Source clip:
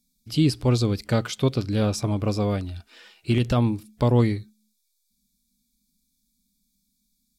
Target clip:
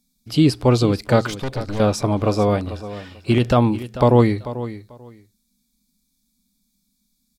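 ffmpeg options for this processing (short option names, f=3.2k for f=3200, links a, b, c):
-filter_complex "[0:a]equalizer=f=790:w=0.46:g=8,asettb=1/sr,asplit=3[a][b][c];[a]atrim=end=1.304[d];[b]atrim=start=1.3:end=1.8,asetpts=PTS-STARTPTS,afade=t=in:d=0.004:c=qsin,afade=t=out:st=0.496:d=0.004:c=qsin,aeval=exprs='(tanh(17.8*val(0)+0.75)-tanh(0.75))/17.8':c=same[e];[c]atrim=start=1.796[f];[d][e]acrossfade=d=0.004:c1=hsin:c2=qsin[g];[g][f]acrossfade=d=0.004:c1=qsin:c2=hsin,aecho=1:1:441|882:0.2|0.0359,volume=2dB"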